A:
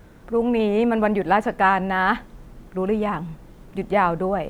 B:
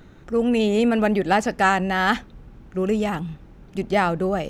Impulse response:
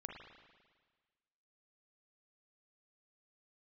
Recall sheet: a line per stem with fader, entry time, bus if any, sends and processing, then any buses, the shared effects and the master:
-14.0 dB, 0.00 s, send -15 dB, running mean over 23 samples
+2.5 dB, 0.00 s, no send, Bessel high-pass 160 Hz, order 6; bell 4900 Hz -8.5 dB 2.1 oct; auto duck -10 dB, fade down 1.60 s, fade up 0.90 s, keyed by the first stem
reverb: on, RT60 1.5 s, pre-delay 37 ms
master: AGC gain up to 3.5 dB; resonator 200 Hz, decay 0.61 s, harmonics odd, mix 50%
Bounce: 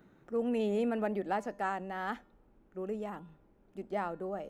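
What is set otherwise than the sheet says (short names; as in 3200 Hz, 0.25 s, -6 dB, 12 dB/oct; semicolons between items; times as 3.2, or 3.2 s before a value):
stem A -14.0 dB -> -21.5 dB; stem B +2.5 dB -> -4.5 dB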